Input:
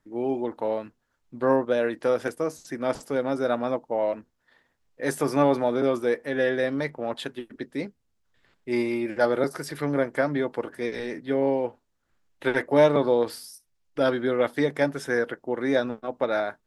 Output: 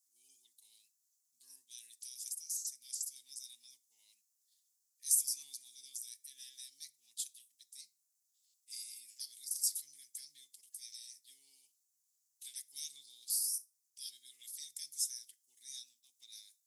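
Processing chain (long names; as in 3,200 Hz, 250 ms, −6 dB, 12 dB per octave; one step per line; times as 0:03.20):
inverse Chebyshev high-pass filter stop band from 1,500 Hz, stop band 70 dB
rectangular room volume 580 cubic metres, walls furnished, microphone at 0.3 metres
level +10.5 dB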